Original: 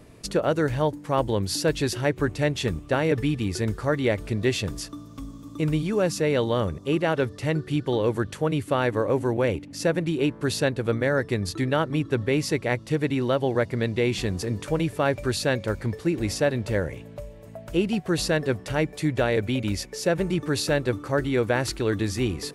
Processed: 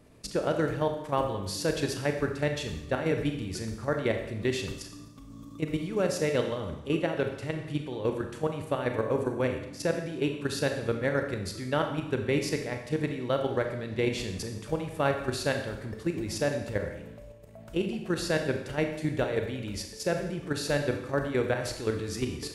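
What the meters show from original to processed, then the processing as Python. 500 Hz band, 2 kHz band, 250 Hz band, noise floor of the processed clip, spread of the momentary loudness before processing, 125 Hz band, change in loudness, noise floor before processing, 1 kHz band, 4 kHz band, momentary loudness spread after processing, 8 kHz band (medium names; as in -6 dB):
-4.5 dB, -5.0 dB, -6.0 dB, -46 dBFS, 4 LU, -7.0 dB, -5.5 dB, -44 dBFS, -4.5 dB, -5.5 dB, 7 LU, -5.0 dB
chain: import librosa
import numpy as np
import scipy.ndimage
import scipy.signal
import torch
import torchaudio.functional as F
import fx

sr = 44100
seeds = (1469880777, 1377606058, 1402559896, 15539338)

y = fx.level_steps(x, sr, step_db=11)
y = fx.rev_schroeder(y, sr, rt60_s=0.86, comb_ms=28, drr_db=4.5)
y = y * librosa.db_to_amplitude(-3.0)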